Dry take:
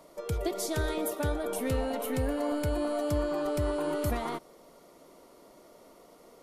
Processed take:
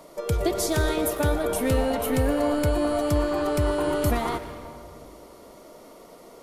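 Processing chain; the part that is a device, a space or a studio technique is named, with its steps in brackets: saturated reverb return (on a send at -6.5 dB: reverb RT60 1.8 s, pre-delay 91 ms + soft clip -34.5 dBFS, distortion -8 dB); on the sum: gain +7 dB

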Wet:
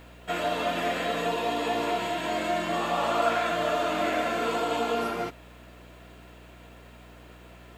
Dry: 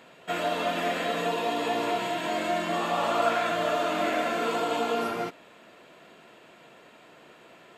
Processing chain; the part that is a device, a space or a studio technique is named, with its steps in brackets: video cassette with head-switching buzz (buzz 60 Hz, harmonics 5, -51 dBFS -5 dB/oct; white noise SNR 39 dB)

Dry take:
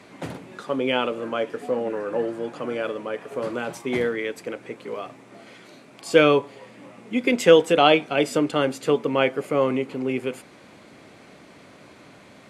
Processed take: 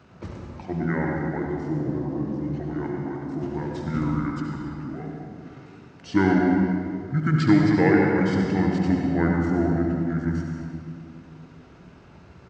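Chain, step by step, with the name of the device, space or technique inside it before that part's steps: dynamic EQ 210 Hz, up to +8 dB, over -44 dBFS, Q 3.9; monster voice (pitch shift -8 st; low shelf 100 Hz +9 dB; echo 71 ms -10 dB; reverb RT60 2.4 s, pre-delay 82 ms, DRR 0.5 dB); gain -6 dB

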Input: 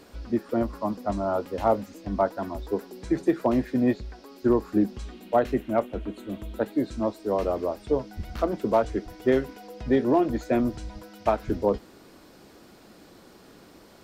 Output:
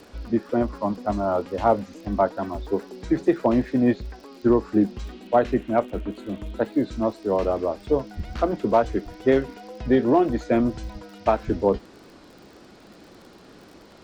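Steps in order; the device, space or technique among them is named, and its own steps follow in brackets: lo-fi chain (LPF 6400 Hz 12 dB/oct; wow and flutter; crackle 55/s -43 dBFS); gain +3 dB

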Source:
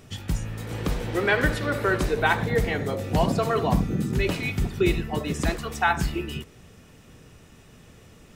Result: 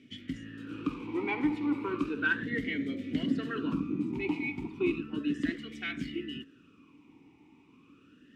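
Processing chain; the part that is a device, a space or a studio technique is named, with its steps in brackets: talk box (tube stage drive 12 dB, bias 0.35; vowel sweep i-u 0.34 Hz); gain +6.5 dB

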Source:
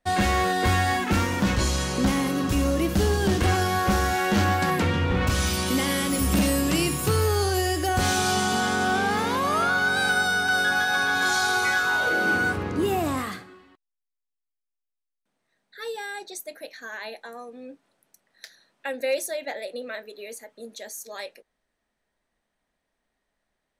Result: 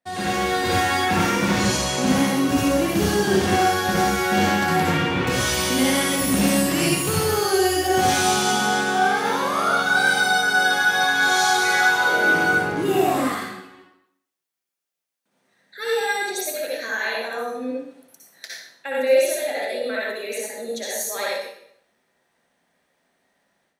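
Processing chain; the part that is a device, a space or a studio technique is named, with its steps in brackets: far laptop microphone (reverb RT60 0.70 s, pre-delay 55 ms, DRR -5.5 dB; HPF 130 Hz 12 dB/oct; AGC); gain -6.5 dB

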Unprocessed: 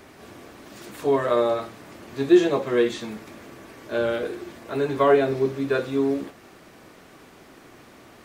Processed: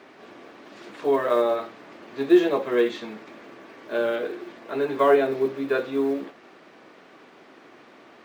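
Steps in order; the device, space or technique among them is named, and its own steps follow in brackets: early digital voice recorder (BPF 250–3900 Hz; block floating point 7-bit)

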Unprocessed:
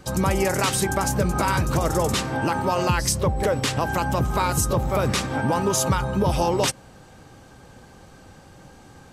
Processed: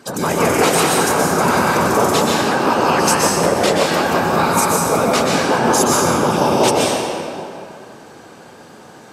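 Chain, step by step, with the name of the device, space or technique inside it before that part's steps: whispering ghost (whisperiser; HPF 220 Hz 12 dB/oct; reverb RT60 2.5 s, pre-delay 0.117 s, DRR -3.5 dB); gain +4 dB

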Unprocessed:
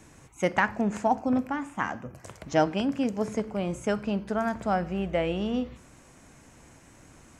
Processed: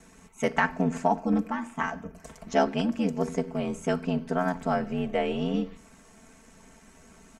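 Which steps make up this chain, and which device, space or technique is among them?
ring-modulated robot voice (ring modulator 44 Hz; comb 4.5 ms, depth 95%)

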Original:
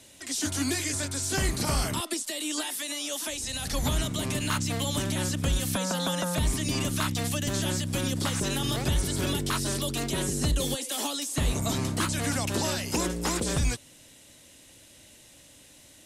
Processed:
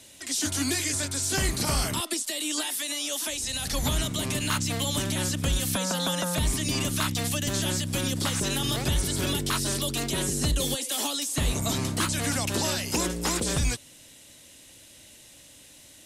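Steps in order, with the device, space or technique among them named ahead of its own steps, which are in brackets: presence and air boost (bell 3600 Hz +2.5 dB 1.9 oct; high shelf 9600 Hz +5 dB)

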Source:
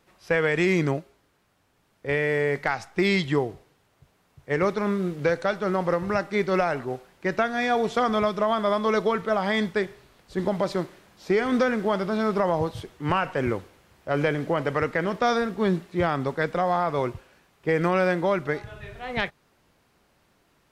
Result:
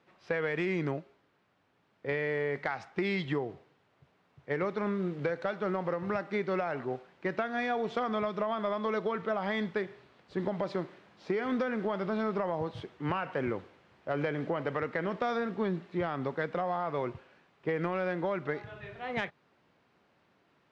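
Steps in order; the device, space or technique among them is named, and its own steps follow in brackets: AM radio (BPF 120–3500 Hz; compressor, threshold -24 dBFS, peak gain reduction 7 dB; soft clip -14.5 dBFS, distortion -27 dB); gain -3 dB

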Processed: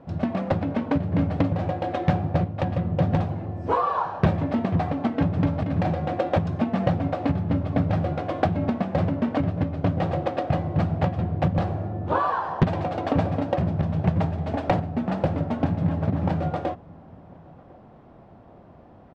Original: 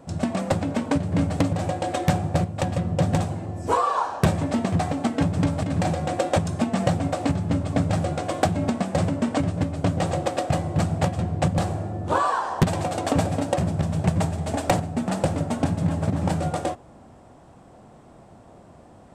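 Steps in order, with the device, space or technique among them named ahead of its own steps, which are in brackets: shout across a valley (air absorption 290 m; outdoor echo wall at 180 m, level -24 dB)

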